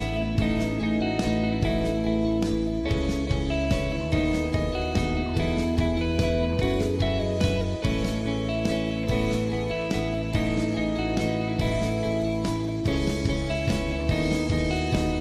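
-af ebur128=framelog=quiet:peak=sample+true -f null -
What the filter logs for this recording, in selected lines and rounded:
Integrated loudness:
  I:         -25.9 LUFS
  Threshold: -35.9 LUFS
Loudness range:
  LRA:         1.1 LU
  Threshold: -45.9 LUFS
  LRA low:   -26.5 LUFS
  LRA high:  -25.3 LUFS
Sample peak:
  Peak:      -11.1 dBFS
True peak:
  Peak:      -11.1 dBFS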